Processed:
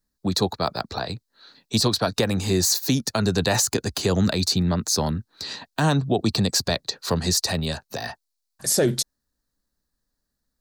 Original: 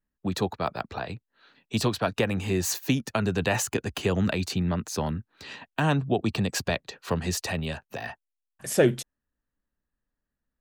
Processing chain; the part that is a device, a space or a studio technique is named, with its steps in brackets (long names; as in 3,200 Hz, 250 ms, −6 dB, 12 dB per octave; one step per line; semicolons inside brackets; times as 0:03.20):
over-bright horn tweeter (high shelf with overshoot 3,500 Hz +6.5 dB, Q 3; brickwall limiter −15 dBFS, peak gain reduction 7.5 dB)
level +4.5 dB